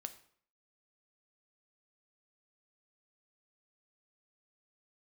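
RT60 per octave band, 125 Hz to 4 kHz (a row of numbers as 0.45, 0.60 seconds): 0.55, 0.60, 0.55, 0.55, 0.55, 0.45 seconds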